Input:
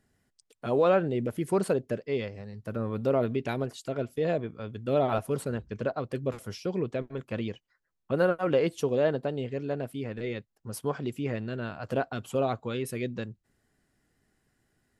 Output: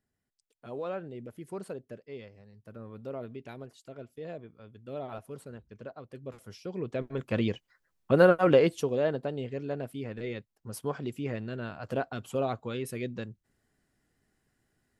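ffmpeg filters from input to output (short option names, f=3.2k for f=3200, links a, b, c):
-af "volume=5dB,afade=t=in:st=6.11:d=0.65:silence=0.473151,afade=t=in:st=6.76:d=0.68:silence=0.266073,afade=t=out:st=8.48:d=0.4:silence=0.421697"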